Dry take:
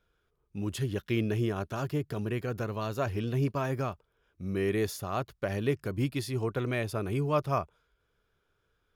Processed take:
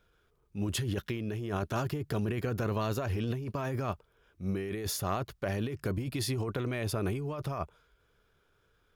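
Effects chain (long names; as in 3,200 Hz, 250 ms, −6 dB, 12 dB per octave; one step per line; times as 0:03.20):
transient designer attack −7 dB, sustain 0 dB
compressor whose output falls as the input rises −35 dBFS, ratio −1
level +2.5 dB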